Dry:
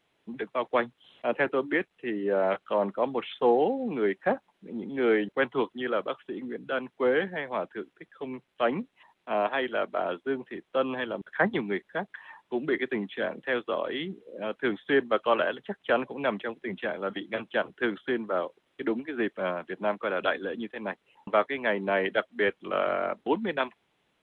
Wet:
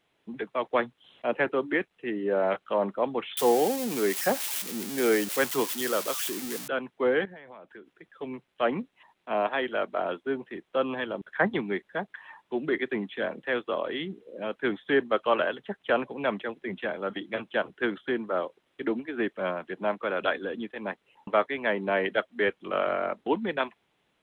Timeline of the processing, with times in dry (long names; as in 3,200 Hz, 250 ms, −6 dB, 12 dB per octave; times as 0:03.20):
0:03.37–0:06.68: spike at every zero crossing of −20.5 dBFS
0:07.25–0:08.09: downward compressor 20 to 1, threshold −42 dBFS